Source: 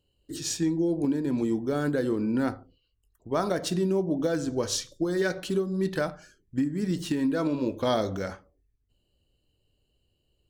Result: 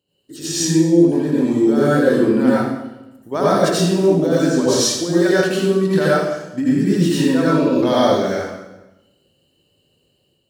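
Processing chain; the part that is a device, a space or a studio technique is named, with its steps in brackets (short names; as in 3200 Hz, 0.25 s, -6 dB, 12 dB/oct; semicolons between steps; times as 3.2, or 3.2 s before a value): far laptop microphone (reverb RT60 0.95 s, pre-delay 74 ms, DRR -8 dB; HPF 160 Hz 12 dB/oct; AGC gain up to 5 dB)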